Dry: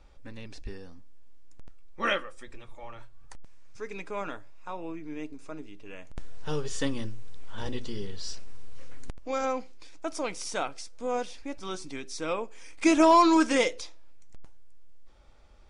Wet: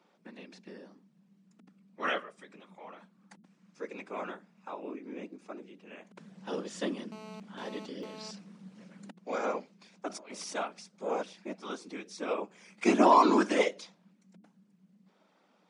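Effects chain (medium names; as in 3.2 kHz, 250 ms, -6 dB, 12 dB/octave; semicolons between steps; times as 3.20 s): whisper effect; Chebyshev high-pass 190 Hz, order 6; treble shelf 6.3 kHz -8.5 dB; 7.12–8.31 s: mobile phone buzz -45 dBFS; 10.08–10.55 s: compressor with a negative ratio -43 dBFS, ratio -1; trim -2.5 dB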